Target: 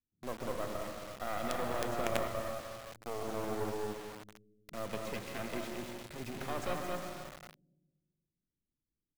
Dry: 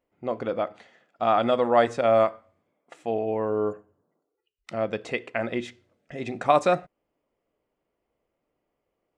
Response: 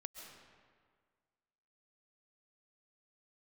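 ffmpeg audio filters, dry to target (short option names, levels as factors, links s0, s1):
-filter_complex "[0:a]asplit=2[s0][s1];[s1]asoftclip=type=tanh:threshold=0.0668,volume=0.316[s2];[s0][s2]amix=inputs=2:normalize=0,alimiter=limit=0.168:level=0:latency=1:release=48,aecho=1:1:222:0.531,acrossover=split=370|3000[s3][s4][s5];[s3]acompressor=threshold=0.0398:ratio=5[s6];[s6][s4][s5]amix=inputs=3:normalize=0[s7];[1:a]atrim=start_sample=2205[s8];[s7][s8]afir=irnorm=-1:irlink=0,acrossover=split=250[s9][s10];[s10]acrusher=bits=4:dc=4:mix=0:aa=0.000001[s11];[s9][s11]amix=inputs=2:normalize=0,volume=0.631"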